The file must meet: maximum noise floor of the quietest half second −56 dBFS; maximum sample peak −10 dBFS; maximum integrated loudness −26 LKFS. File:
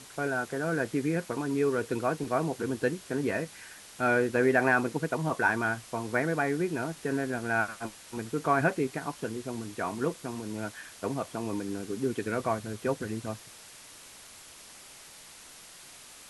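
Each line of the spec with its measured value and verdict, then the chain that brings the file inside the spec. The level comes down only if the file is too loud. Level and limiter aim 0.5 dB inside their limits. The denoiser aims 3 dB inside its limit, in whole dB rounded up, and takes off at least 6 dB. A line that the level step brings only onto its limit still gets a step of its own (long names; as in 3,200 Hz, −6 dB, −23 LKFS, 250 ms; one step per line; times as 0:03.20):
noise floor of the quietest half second −50 dBFS: out of spec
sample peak −12.0 dBFS: in spec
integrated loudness −30.5 LKFS: in spec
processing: broadband denoise 9 dB, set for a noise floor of −50 dBFS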